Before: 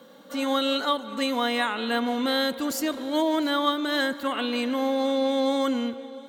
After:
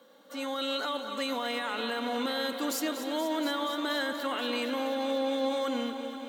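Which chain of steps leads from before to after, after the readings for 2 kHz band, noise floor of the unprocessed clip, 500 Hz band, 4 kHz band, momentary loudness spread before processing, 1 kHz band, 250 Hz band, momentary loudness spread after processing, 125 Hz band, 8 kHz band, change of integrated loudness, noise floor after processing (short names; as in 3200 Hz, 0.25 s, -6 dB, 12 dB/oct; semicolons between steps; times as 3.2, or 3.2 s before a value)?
-5.0 dB, -48 dBFS, -5.5 dB, -5.0 dB, 4 LU, -6.0 dB, -7.5 dB, 3 LU, n/a, -3.0 dB, -6.0 dB, -46 dBFS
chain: HPF 290 Hz 12 dB/oct; limiter -21 dBFS, peak gain reduction 11 dB; AGC gain up to 5 dB; lo-fi delay 0.238 s, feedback 80%, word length 9-bit, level -11 dB; gain -7 dB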